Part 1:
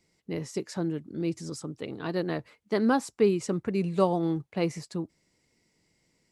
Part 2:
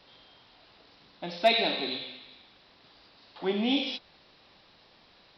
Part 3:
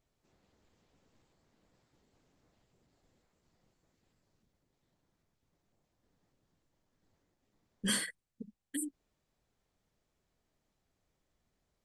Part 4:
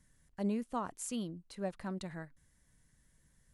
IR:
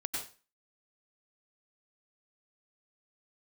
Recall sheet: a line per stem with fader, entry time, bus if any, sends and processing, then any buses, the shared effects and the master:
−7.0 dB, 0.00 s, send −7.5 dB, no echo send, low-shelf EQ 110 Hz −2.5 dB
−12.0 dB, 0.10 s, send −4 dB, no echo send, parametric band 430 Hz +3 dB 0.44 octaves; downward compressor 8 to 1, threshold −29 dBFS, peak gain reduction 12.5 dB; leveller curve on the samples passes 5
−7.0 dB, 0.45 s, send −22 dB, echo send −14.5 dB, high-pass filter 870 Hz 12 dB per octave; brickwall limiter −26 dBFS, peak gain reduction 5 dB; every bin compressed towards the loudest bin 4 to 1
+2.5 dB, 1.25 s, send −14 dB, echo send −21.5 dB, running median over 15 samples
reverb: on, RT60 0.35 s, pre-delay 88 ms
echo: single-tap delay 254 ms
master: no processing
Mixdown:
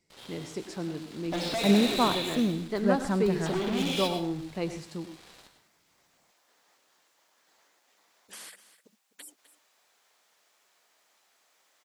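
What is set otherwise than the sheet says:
stem 3: send off
stem 4 +2.5 dB → +10.5 dB

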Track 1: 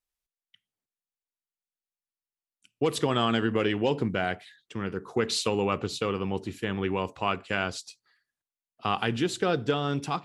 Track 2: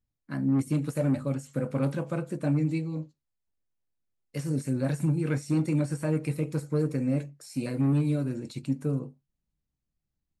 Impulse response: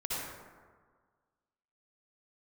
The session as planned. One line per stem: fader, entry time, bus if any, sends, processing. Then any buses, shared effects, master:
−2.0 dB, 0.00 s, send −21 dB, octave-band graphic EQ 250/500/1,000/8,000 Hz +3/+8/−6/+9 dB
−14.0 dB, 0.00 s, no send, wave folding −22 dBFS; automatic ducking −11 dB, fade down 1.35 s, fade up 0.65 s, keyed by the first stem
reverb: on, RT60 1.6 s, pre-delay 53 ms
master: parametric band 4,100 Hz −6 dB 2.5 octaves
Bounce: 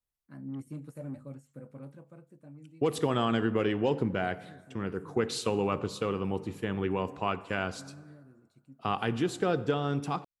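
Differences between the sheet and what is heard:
stem 1: missing octave-band graphic EQ 250/500/1,000/8,000 Hz +3/+8/−6/+9 dB
stem 2: missing wave folding −22 dBFS

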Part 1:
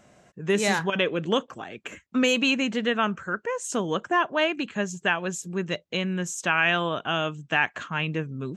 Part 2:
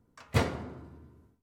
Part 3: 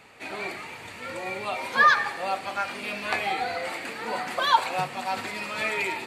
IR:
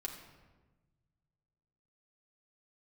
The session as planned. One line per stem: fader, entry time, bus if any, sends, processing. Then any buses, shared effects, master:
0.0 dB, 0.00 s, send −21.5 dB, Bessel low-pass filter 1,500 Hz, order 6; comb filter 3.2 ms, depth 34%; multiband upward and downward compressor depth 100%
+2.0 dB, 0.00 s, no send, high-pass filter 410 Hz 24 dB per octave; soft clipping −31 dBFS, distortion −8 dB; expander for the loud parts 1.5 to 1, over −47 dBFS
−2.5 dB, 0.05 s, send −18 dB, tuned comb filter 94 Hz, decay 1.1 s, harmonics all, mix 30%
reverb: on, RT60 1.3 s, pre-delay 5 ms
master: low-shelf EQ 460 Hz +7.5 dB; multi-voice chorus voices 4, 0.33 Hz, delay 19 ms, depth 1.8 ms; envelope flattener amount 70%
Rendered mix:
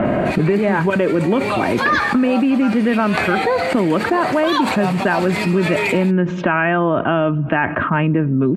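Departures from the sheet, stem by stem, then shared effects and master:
stem 2: muted
master: missing multi-voice chorus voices 4, 0.33 Hz, delay 19 ms, depth 1.8 ms

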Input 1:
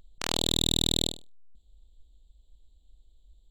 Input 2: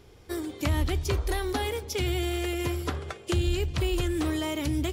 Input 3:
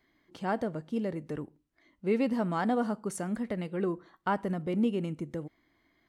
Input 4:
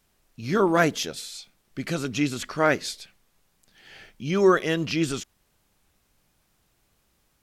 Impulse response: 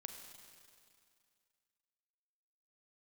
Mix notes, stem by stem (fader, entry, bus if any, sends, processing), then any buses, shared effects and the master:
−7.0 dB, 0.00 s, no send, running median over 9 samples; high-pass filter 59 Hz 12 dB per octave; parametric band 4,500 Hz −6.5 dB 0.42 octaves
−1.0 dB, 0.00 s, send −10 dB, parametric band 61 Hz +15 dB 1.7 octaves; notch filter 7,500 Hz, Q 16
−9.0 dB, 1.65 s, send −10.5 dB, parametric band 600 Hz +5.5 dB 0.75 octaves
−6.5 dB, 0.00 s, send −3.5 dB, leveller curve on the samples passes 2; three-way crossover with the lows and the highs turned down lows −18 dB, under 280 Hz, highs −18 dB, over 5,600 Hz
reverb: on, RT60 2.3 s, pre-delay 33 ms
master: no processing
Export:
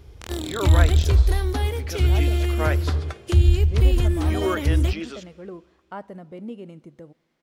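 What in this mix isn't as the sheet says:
stem 1: missing running median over 9 samples
stem 4: missing leveller curve on the samples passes 2
reverb return −6.0 dB

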